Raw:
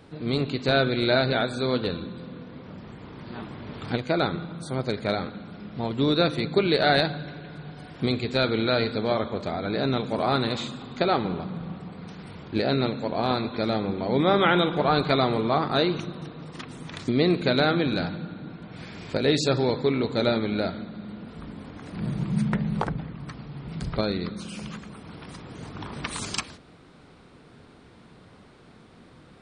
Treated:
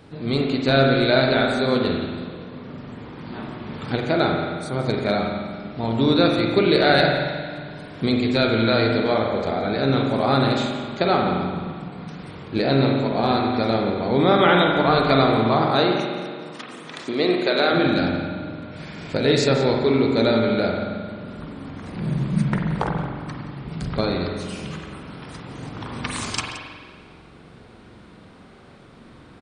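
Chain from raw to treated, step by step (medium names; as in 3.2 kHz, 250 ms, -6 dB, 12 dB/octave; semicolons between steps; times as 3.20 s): 15.63–17.71 s: high-pass 170 Hz -> 430 Hz 12 dB/octave; delay 173 ms -14.5 dB; reverberation RT60 1.7 s, pre-delay 44 ms, DRR 1 dB; trim +2.5 dB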